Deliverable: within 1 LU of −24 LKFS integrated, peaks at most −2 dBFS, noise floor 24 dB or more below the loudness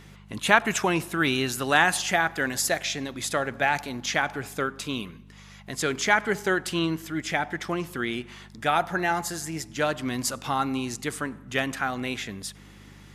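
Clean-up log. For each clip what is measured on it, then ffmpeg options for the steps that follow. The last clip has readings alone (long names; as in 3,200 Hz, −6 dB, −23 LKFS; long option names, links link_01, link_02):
mains hum 50 Hz; hum harmonics up to 200 Hz; level of the hum −47 dBFS; integrated loudness −26.5 LKFS; sample peak −1.5 dBFS; target loudness −24.0 LKFS
→ -af "bandreject=frequency=50:width_type=h:width=4,bandreject=frequency=100:width_type=h:width=4,bandreject=frequency=150:width_type=h:width=4,bandreject=frequency=200:width_type=h:width=4"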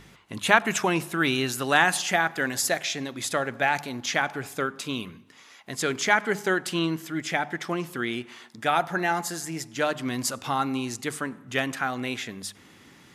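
mains hum none found; integrated loudness −26.5 LKFS; sample peak −1.5 dBFS; target loudness −24.0 LKFS
→ -af "volume=2.5dB,alimiter=limit=-2dB:level=0:latency=1"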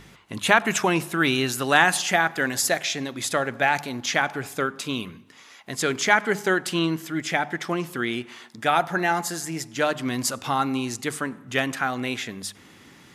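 integrated loudness −24.0 LKFS; sample peak −2.0 dBFS; background noise floor −50 dBFS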